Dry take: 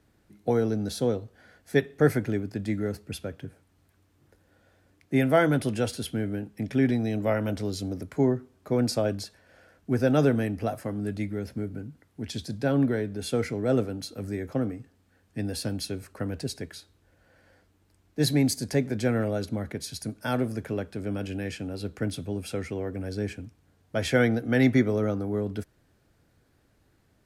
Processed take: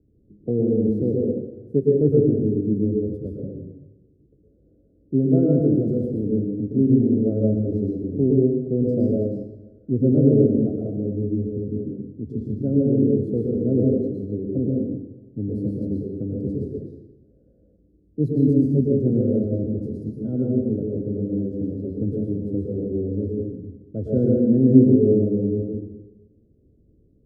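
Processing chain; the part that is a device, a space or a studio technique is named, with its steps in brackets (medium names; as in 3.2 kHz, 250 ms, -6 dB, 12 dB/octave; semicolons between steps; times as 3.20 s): inverse Chebyshev low-pass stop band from 890 Hz, stop band 40 dB; bathroom (reverberation RT60 1.1 s, pre-delay 104 ms, DRR -2.5 dB); trim +3.5 dB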